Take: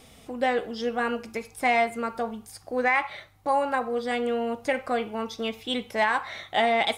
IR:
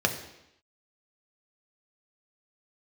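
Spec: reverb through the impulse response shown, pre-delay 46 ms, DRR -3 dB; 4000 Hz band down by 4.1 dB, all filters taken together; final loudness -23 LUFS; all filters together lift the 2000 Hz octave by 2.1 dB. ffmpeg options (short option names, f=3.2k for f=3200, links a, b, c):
-filter_complex "[0:a]equalizer=f=2k:t=o:g=4,equalizer=f=4k:t=o:g=-7.5,asplit=2[a][b];[1:a]atrim=start_sample=2205,adelay=46[c];[b][c]afir=irnorm=-1:irlink=0,volume=-9dB[d];[a][d]amix=inputs=2:normalize=0,volume=-1dB"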